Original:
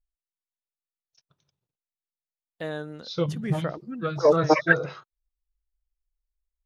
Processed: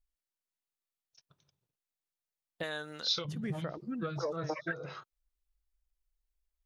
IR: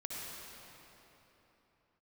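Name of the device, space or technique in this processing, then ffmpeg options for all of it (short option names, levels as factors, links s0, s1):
serial compression, leveller first: -filter_complex "[0:a]acompressor=threshold=0.0794:ratio=2.5,acompressor=threshold=0.02:ratio=5,asettb=1/sr,asplit=3[s0][s1][s2];[s0]atrim=end=2.634[s3];[s1]atrim=start=2.63:end=3.25,asetpts=PTS-STARTPTS,afade=t=in:d=0.004:c=qsin,afade=t=out:st=0.616:d=0.004:c=qsin,tiltshelf=f=780:g=-9.5[s4];[s2]atrim=start=3.246[s5];[s3][s4]acrossfade=d=0.004:c1=hsin:c2=qsin[s6];[s6][s5]acrossfade=d=0.004:c1=qsin:c2=hsin"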